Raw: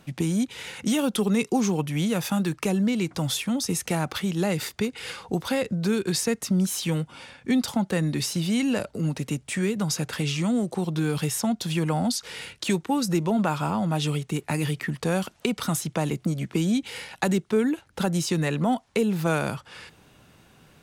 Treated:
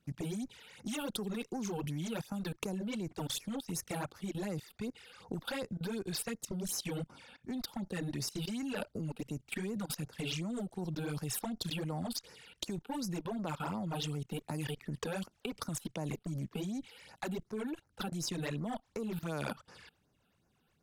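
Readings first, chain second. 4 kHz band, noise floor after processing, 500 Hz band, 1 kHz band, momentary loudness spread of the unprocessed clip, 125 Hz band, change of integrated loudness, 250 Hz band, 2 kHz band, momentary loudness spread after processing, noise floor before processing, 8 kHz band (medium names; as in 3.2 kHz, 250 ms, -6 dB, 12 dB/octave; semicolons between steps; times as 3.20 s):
-10.5 dB, -75 dBFS, -13.5 dB, -13.0 dB, 6 LU, -13.0 dB, -13.0 dB, -14.0 dB, -13.0 dB, 5 LU, -58 dBFS, -11.5 dB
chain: Chebyshev shaper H 4 -23 dB, 7 -24 dB, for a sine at -9 dBFS; phase shifter stages 12, 2.7 Hz, lowest notch 100–3400 Hz; level held to a coarse grid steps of 19 dB; trim +1 dB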